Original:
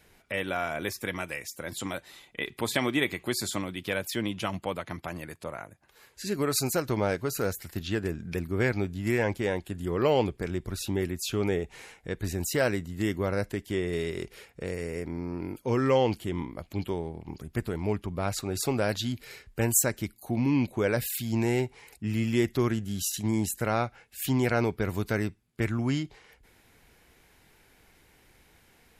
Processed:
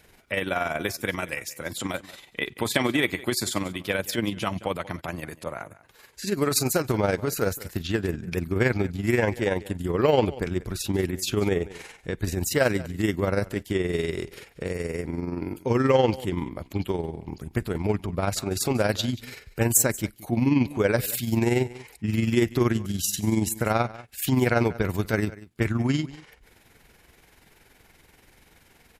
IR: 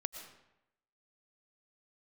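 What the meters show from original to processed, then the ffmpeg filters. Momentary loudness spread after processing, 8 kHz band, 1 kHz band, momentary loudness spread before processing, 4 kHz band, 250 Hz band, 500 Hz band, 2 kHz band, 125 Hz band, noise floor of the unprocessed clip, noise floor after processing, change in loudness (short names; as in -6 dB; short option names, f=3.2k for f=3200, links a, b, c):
11 LU, +4.0 dB, +3.5 dB, 11 LU, +3.5 dB, +3.5 dB, +3.5 dB, +3.5 dB, +3.5 dB, -61 dBFS, -58 dBFS, +3.5 dB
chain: -af "aecho=1:1:180:0.112,acontrast=55,tremolo=f=21:d=0.519"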